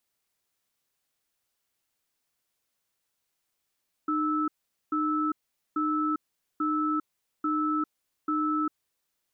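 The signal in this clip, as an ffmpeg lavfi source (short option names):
-f lavfi -i "aevalsrc='0.0447*(sin(2*PI*305*t)+sin(2*PI*1310*t))*clip(min(mod(t,0.84),0.4-mod(t,0.84))/0.005,0,1)':d=4.9:s=44100"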